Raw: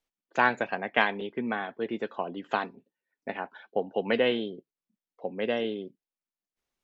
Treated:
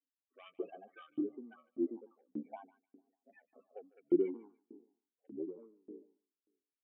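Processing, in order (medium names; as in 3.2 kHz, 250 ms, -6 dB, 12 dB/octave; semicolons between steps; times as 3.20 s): pitch shift switched off and on -5 st, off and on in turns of 310 ms; loudest bins only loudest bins 8; Chebyshev shaper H 5 -27 dB, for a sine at -15.5 dBFS; cascade formant filter i; on a send: tape echo 148 ms, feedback 43%, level -12 dB, low-pass 1.1 kHz; on the sum: LFO high-pass saw up 1.7 Hz 330–2700 Hz; trim +4 dB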